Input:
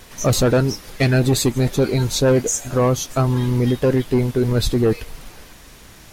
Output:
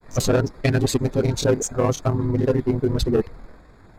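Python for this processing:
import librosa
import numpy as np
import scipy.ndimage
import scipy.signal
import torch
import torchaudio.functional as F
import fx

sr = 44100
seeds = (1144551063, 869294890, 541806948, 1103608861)

y = fx.wiener(x, sr, points=15)
y = fx.stretch_grains(y, sr, factor=0.65, grain_ms=49.0)
y = fx.granulator(y, sr, seeds[0], grain_ms=100.0, per_s=20.0, spray_ms=18.0, spread_st=0)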